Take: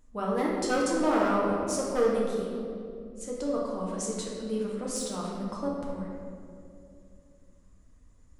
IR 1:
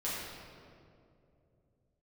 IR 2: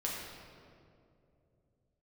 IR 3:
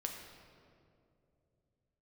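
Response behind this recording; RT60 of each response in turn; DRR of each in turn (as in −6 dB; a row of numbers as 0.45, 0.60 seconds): 2; 2.6, 2.6, 2.6 seconds; −9.0, −4.5, 1.5 decibels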